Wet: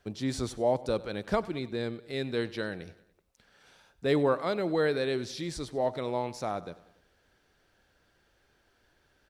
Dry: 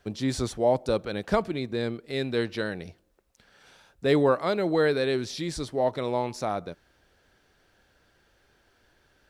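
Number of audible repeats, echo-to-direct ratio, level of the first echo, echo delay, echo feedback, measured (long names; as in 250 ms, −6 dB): 3, −17.5 dB, −19.0 dB, 96 ms, 53%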